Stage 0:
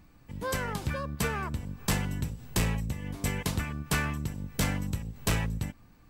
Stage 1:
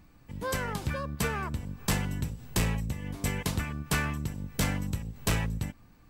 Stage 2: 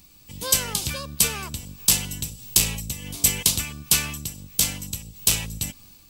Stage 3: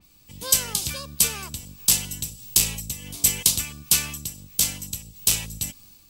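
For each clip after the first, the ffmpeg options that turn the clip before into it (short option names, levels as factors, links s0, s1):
-af anull
-af "aexciter=amount=5.8:drive=6.8:freq=2600,dynaudnorm=f=140:g=5:m=1.88,volume=0.891"
-af "adynamicequalizer=threshold=0.0158:dfrequency=3600:dqfactor=0.7:tfrequency=3600:tqfactor=0.7:attack=5:release=100:ratio=0.375:range=2.5:mode=boostabove:tftype=highshelf,volume=0.668"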